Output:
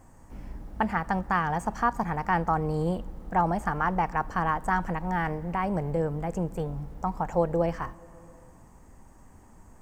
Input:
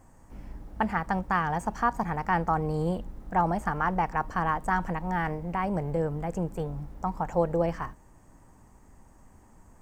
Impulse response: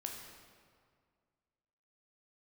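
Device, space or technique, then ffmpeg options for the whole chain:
compressed reverb return: -filter_complex "[0:a]asplit=2[s0][s1];[1:a]atrim=start_sample=2205[s2];[s1][s2]afir=irnorm=-1:irlink=0,acompressor=threshold=0.0126:ratio=6,volume=0.422[s3];[s0][s3]amix=inputs=2:normalize=0"

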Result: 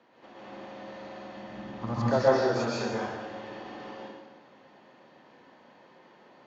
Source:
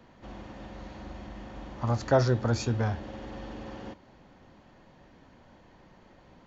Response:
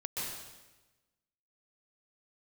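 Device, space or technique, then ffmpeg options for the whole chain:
supermarket ceiling speaker: -filter_complex "[0:a]asplit=3[s0][s1][s2];[s0]afade=t=out:st=1.35:d=0.02[s3];[s1]asubboost=boost=8:cutoff=250,afade=t=in:st=1.35:d=0.02,afade=t=out:st=2.06:d=0.02[s4];[s2]afade=t=in:st=2.06:d=0.02[s5];[s3][s4][s5]amix=inputs=3:normalize=0,highpass=320,lowpass=5200[s6];[1:a]atrim=start_sample=2205[s7];[s6][s7]afir=irnorm=-1:irlink=0"

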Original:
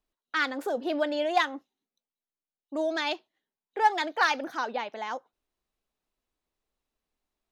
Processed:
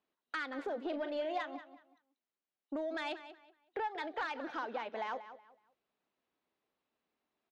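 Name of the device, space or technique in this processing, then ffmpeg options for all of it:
AM radio: -filter_complex "[0:a]highpass=170,lowpass=3300,acompressor=threshold=0.0126:ratio=5,asoftclip=type=tanh:threshold=0.0282,asplit=3[s0][s1][s2];[s0]afade=t=out:st=0.91:d=0.02[s3];[s1]asplit=2[s4][s5];[s5]adelay=39,volume=0.316[s6];[s4][s6]amix=inputs=2:normalize=0,afade=t=in:st=0.91:d=0.02,afade=t=out:st=1.43:d=0.02[s7];[s2]afade=t=in:st=1.43:d=0.02[s8];[s3][s7][s8]amix=inputs=3:normalize=0,asplit=2[s9][s10];[s10]adelay=186,lowpass=f=4900:p=1,volume=0.237,asplit=2[s11][s12];[s12]adelay=186,lowpass=f=4900:p=1,volume=0.27,asplit=2[s13][s14];[s14]adelay=186,lowpass=f=4900:p=1,volume=0.27[s15];[s9][s11][s13][s15]amix=inputs=4:normalize=0,volume=1.33"

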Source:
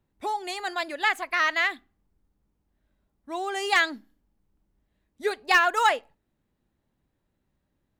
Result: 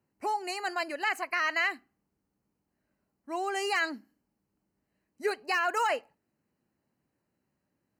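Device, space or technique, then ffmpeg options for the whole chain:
PA system with an anti-feedback notch: -af "highpass=130,asuperstop=centerf=3500:order=20:qfactor=4.4,alimiter=limit=0.126:level=0:latency=1:release=18,volume=0.841"

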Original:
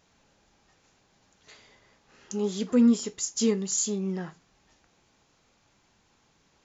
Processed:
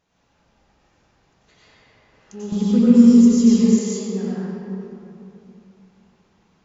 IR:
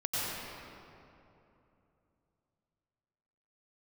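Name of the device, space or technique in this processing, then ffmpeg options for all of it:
swimming-pool hall: -filter_complex "[1:a]atrim=start_sample=2205[s0];[0:a][s0]afir=irnorm=-1:irlink=0,highshelf=f=4700:g=-8,asettb=1/sr,asplit=3[s1][s2][s3];[s1]atrim=end=2.524[s4];[s2]atrim=start=2.52:end=3.79,asetpts=PTS-STARTPTS,afade=t=in:d=0.004:c=qsin,afade=t=out:st=1.266:d=0.004:c=qsin,bass=f=250:g=14,treble=f=4000:g=4[s5];[s3]atrim=start=3.786[s6];[s4][s5]acrossfade=d=0.004:c1=hsin:c2=qsin[s7];[s7][s6]acrossfade=d=0.004:c1=qsin:c2=hsin,volume=0.668"

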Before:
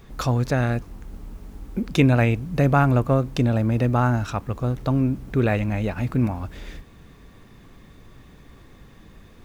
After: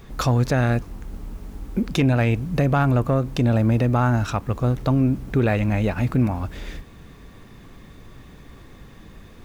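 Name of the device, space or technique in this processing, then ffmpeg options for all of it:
soft clipper into limiter: -af "asoftclip=type=tanh:threshold=0.376,alimiter=limit=0.178:level=0:latency=1:release=117,volume=1.5"

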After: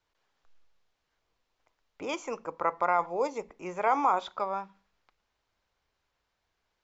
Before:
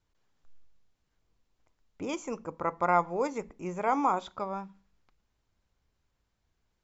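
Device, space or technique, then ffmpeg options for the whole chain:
DJ mixer with the lows and highs turned down: -filter_complex "[0:a]asettb=1/sr,asplit=3[s0][s1][s2];[s0]atrim=end=3.064[s3];[s1]atrim=start=3.06:end=3.49,asetpts=PTS-STARTPTS,afade=t=in:d=0.004:c=qsin,afade=t=out:st=0.426:d=0.004:c=qsin,equalizer=f=1600:t=o:w=0.87:g=-11.5[s4];[s2]atrim=start=3.486[s5];[s3][s4]acrossfade=d=0.004:c1=hsin:c2=qsin[s6];[s6][s5]acrossfade=d=0.004:c1=qsin:c2=hsin,acrossover=split=420 6400:gain=0.224 1 0.141[s7][s8][s9];[s7][s8][s9]amix=inputs=3:normalize=0,alimiter=limit=0.112:level=0:latency=1:release=38,volume=1.68"

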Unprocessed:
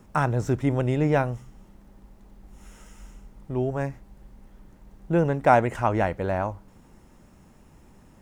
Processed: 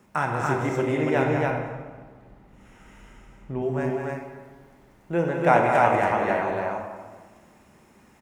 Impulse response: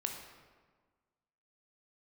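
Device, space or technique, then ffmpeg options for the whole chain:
stadium PA: -filter_complex "[0:a]asettb=1/sr,asplit=3[s0][s1][s2];[s0]atrim=end=1.224[s3];[s1]atrim=start=1.22:end=3.62,asetpts=PTS-STARTPTS,afade=t=in:d=0.004:c=qsin,afade=t=out:st=2.396:d=0.004:c=qsin,bass=f=250:g=8,treble=f=4000:g=-10[s4];[s2]atrim=start=3.616[s5];[s3][s4]acrossfade=d=0.004:c1=hsin:c2=qsin[s6];[s6][s5]acrossfade=d=0.004:c1=qsin:c2=hsin,highpass=f=230:p=1,equalizer=f=2100:t=o:w=0.91:g=4.5,aecho=1:1:192.4|282.8:0.447|0.794[s7];[1:a]atrim=start_sample=2205[s8];[s7][s8]afir=irnorm=-1:irlink=0,volume=0.841"

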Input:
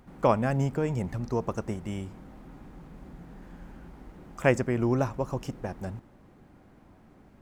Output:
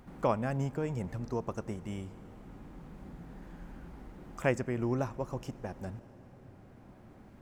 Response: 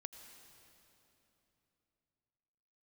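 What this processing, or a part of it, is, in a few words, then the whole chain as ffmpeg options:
ducked reverb: -filter_complex "[0:a]asplit=3[s0][s1][s2];[1:a]atrim=start_sample=2205[s3];[s1][s3]afir=irnorm=-1:irlink=0[s4];[s2]apad=whole_len=326921[s5];[s4][s5]sidechaincompress=threshold=0.00562:ratio=3:attack=16:release=1220,volume=2.82[s6];[s0][s6]amix=inputs=2:normalize=0,volume=0.422"

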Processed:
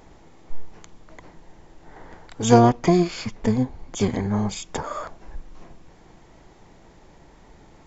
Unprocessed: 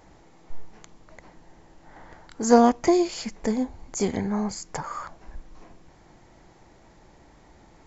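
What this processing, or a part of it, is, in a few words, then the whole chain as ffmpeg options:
octave pedal: -filter_complex "[0:a]asettb=1/sr,asplit=3[s0][s1][s2];[s0]atrim=end=2.594[s3];[s1]atrim=start=2.59:end=4.12,asetpts=PTS-STARTPTS,afade=t=in:d=0.004:c=qsin,afade=t=out:st=1.526:d=0.004:c=qsin,lowpass=5900[s4];[s2]atrim=start=4.116[s5];[s3][s4]acrossfade=d=0.004:c1=hsin:c2=qsin[s6];[s6][s5]acrossfade=d=0.004:c1=qsin:c2=hsin,asplit=2[s7][s8];[s8]asetrate=22050,aresample=44100,atempo=2,volume=0.708[s9];[s7][s9]amix=inputs=2:normalize=0,volume=1.19"

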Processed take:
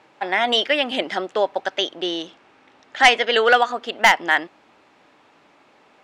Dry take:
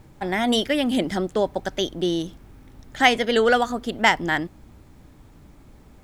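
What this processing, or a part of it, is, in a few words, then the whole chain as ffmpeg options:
megaphone: -filter_complex "[0:a]highpass=590,lowpass=4000,equalizer=f=2700:t=o:w=0.23:g=5,asoftclip=type=hard:threshold=0.282,asettb=1/sr,asplit=3[s0][s1][s2];[s0]atrim=end=1.974[s3];[s1]atrim=start=1.97:end=3.24,asetpts=PTS-STARTPTS,afade=t=in:d=0.004:c=qsin,afade=t=out:st=1.266:d=0.004:c=qsin,lowpass=f=10000:w=0.5412,lowpass=f=10000:w=1.3066[s4];[s2]atrim=start=3.236[s5];[s3][s4]acrossfade=d=0.004:c1=hsin:c2=qsin[s6];[s6][s5]acrossfade=d=0.004:c1=qsin:c2=hsin,volume=2"

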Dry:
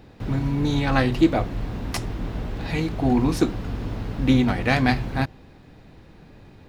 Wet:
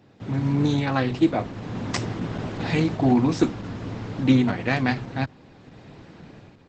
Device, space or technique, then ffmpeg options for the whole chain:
video call: -af "highpass=f=100:w=0.5412,highpass=f=100:w=1.3066,dynaudnorm=f=160:g=5:m=3.55,volume=0.562" -ar 48000 -c:a libopus -b:a 12k

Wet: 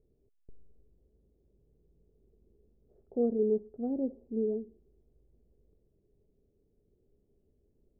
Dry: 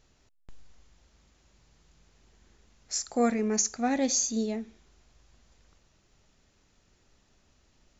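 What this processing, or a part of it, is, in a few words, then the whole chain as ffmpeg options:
under water: -af "lowpass=f=500:w=0.5412,lowpass=f=500:w=1.3066,equalizer=f=420:t=o:w=0.38:g=11,volume=0.562"

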